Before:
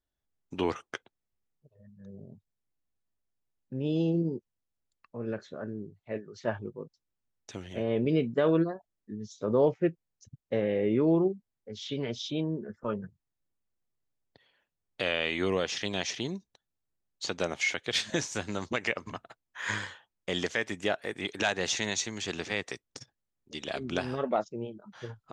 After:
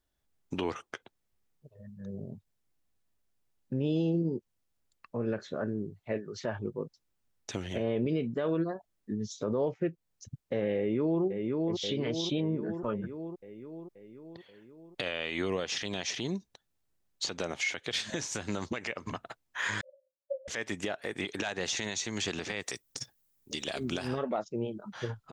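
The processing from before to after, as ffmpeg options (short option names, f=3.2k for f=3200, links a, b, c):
-filter_complex "[0:a]asplit=2[a][b];[b]afade=t=in:st=10.77:d=0.01,afade=t=out:st=11.23:d=0.01,aecho=0:1:530|1060|1590|2120|2650|3180|3710:0.354813|0.212888|0.127733|0.0766397|0.0459838|0.0275903|0.0165542[c];[a][c]amix=inputs=2:normalize=0,asettb=1/sr,asplit=3[d][e][f];[d]atrim=end=19.814[g];[e]atrim=start=19.81:end=20.48,asetpts=PTS-STARTPTS,afade=t=in:d=0.004:c=qsin,afade=t=out:st=0.666:d=0.004:c=qsin,asuperpass=centerf=560:order=20:qfactor=6.5[h];[f]atrim=start=20.476[i];[g][h]acrossfade=d=0.004:c1=hsin:c2=qsin[j];[j][i]acrossfade=d=0.004:c1=qsin:c2=hsin,asettb=1/sr,asplit=3[k][l][m];[k]atrim=end=22.604[n];[l]atrim=start=22.6:end=24.08,asetpts=PTS-STARTPTS,afade=t=in:d=0.004:c=qsin,afade=t=out:st=1.476:d=0.004:c=qsin,aemphasis=mode=production:type=50fm[o];[m]atrim=start=24.076[p];[n][o]acrossfade=d=0.004:c1=hsin:c2=qsin[q];[q][p]acrossfade=d=0.004:c1=qsin:c2=hsin,acompressor=threshold=-37dB:ratio=2,alimiter=level_in=4dB:limit=-24dB:level=0:latency=1:release=79,volume=-4dB,volume=6.5dB"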